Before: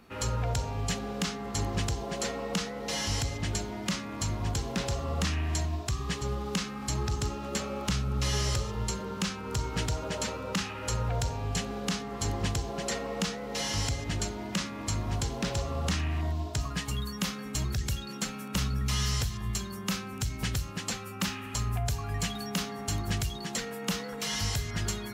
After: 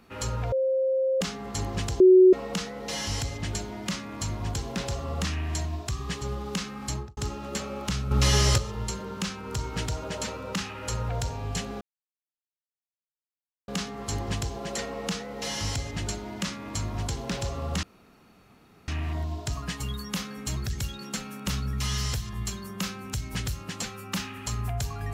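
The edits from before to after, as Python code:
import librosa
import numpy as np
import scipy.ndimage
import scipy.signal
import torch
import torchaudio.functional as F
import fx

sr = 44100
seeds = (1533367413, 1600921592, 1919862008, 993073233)

y = fx.studio_fade_out(x, sr, start_s=6.9, length_s=0.27)
y = fx.edit(y, sr, fx.bleep(start_s=0.52, length_s=0.69, hz=528.0, db=-21.5),
    fx.bleep(start_s=2.0, length_s=0.33, hz=371.0, db=-11.0),
    fx.clip_gain(start_s=8.11, length_s=0.47, db=7.5),
    fx.insert_silence(at_s=11.81, length_s=1.87),
    fx.insert_room_tone(at_s=15.96, length_s=1.05), tone=tone)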